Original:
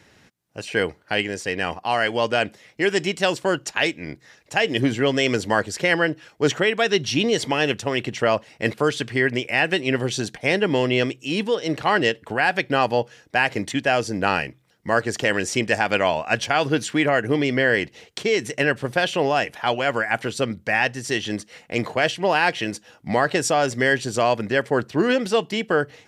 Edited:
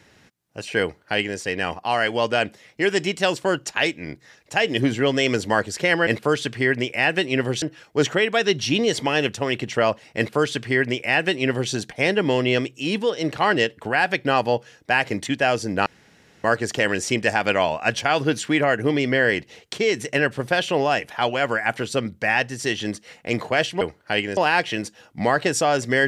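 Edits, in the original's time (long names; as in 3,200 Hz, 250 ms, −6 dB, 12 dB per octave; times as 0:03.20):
0:00.82–0:01.38: duplicate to 0:22.26
0:08.62–0:10.17: duplicate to 0:06.07
0:14.31–0:14.89: fill with room tone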